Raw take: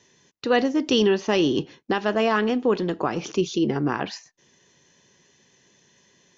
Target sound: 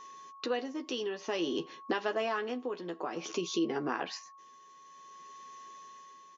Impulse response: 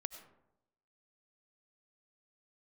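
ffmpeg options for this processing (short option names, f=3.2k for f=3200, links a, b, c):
-filter_complex "[0:a]highpass=300,asplit=2[a][b];[b]adelay=12,volume=-6dB[c];[a][c]amix=inputs=2:normalize=0,aeval=exprs='val(0)+0.00447*sin(2*PI*1100*n/s)':c=same,acompressor=threshold=-34dB:ratio=2,tremolo=f=0.54:d=0.54"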